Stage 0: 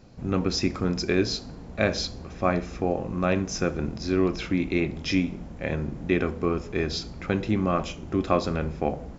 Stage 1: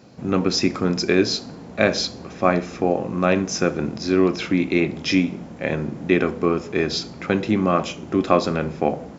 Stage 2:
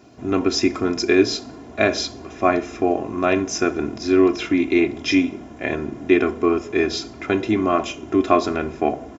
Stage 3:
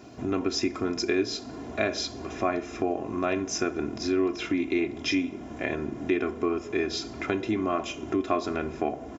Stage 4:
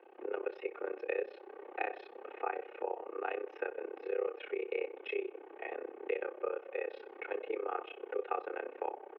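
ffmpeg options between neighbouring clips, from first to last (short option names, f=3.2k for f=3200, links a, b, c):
-af "highpass=150,volume=6dB"
-af "equalizer=f=4.4k:w=6.7:g=-7.5,aecho=1:1:2.9:0.74,volume=-1dB"
-af "acompressor=threshold=-33dB:ratio=2,volume=1.5dB"
-af "tremolo=f=32:d=0.947,highpass=f=210:t=q:w=0.5412,highpass=f=210:t=q:w=1.307,lowpass=f=2.7k:t=q:w=0.5176,lowpass=f=2.7k:t=q:w=0.7071,lowpass=f=2.7k:t=q:w=1.932,afreqshift=120,volume=-6dB"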